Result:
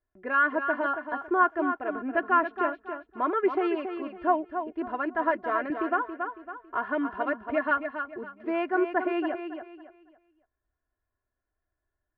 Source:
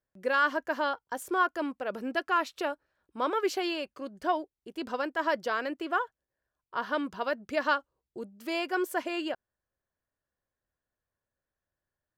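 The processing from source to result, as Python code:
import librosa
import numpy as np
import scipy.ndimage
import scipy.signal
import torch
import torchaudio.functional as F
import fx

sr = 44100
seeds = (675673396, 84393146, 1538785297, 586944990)

y = scipy.signal.sosfilt(scipy.signal.butter(4, 2100.0, 'lowpass', fs=sr, output='sos'), x)
y = fx.low_shelf(y, sr, hz=64.0, db=8.5)
y = y + 0.71 * np.pad(y, (int(2.9 * sr / 1000.0), 0))[:len(y)]
y = fx.echo_feedback(y, sr, ms=277, feedback_pct=30, wet_db=-8)
y = fx.band_squash(y, sr, depth_pct=40, at=(5.7, 7.71))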